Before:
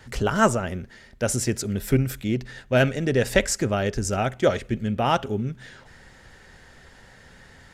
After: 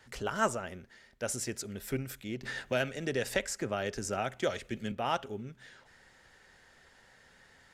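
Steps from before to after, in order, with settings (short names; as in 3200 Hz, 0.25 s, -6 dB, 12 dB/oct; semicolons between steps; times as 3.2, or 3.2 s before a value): low shelf 270 Hz -10 dB; 2.43–4.92 three-band squash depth 70%; gain -8.5 dB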